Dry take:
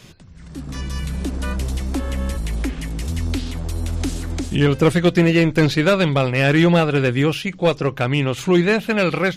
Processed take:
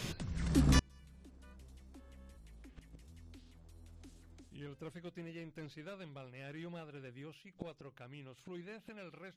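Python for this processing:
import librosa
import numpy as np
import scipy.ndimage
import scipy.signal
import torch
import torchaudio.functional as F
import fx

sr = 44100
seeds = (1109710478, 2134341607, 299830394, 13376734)

y = fx.gate_flip(x, sr, shuts_db=-19.0, range_db=-36)
y = F.gain(torch.from_numpy(y), 3.0).numpy()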